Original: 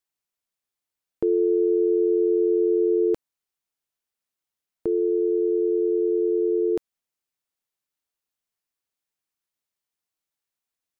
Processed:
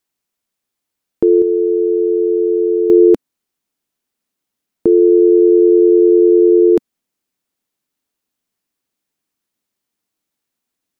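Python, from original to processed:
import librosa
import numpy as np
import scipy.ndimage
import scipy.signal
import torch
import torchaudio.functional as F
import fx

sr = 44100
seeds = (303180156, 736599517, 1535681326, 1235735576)

y = fx.peak_eq(x, sr, hz=250.0, db=fx.steps((0.0, 6.5), (1.42, -3.0), (2.9, 10.5)), octaves=1.3)
y = F.gain(torch.from_numpy(y), 7.5).numpy()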